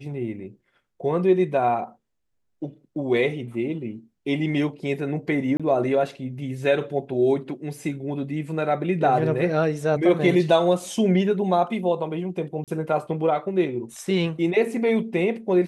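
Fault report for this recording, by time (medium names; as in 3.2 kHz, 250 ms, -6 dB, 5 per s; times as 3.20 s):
5.57–5.60 s: dropout 26 ms
12.64–12.68 s: dropout 37 ms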